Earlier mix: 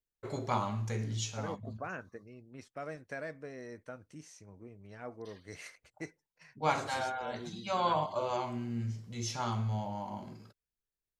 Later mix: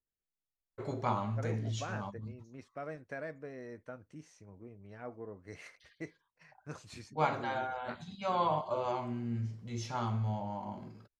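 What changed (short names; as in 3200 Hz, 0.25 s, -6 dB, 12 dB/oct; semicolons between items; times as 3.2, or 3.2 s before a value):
first voice: entry +0.55 s; master: add high shelf 3800 Hz -11 dB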